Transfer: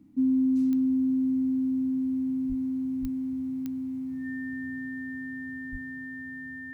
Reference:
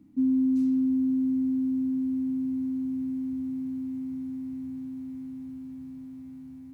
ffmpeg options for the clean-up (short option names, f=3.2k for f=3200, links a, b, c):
-filter_complex "[0:a]adeclick=t=4,bandreject=f=1.8k:w=30,asplit=3[a][b][c];[a]afade=t=out:st=2.48:d=0.02[d];[b]highpass=f=140:w=0.5412,highpass=f=140:w=1.3066,afade=t=in:st=2.48:d=0.02,afade=t=out:st=2.6:d=0.02[e];[c]afade=t=in:st=2.6:d=0.02[f];[d][e][f]amix=inputs=3:normalize=0,asplit=3[g][h][i];[g]afade=t=out:st=3.01:d=0.02[j];[h]highpass=f=140:w=0.5412,highpass=f=140:w=1.3066,afade=t=in:st=3.01:d=0.02,afade=t=out:st=3.13:d=0.02[k];[i]afade=t=in:st=3.13:d=0.02[l];[j][k][l]amix=inputs=3:normalize=0,asplit=3[m][n][o];[m]afade=t=out:st=5.71:d=0.02[p];[n]highpass=f=140:w=0.5412,highpass=f=140:w=1.3066,afade=t=in:st=5.71:d=0.02,afade=t=out:st=5.83:d=0.02[q];[o]afade=t=in:st=5.83:d=0.02[r];[p][q][r]amix=inputs=3:normalize=0"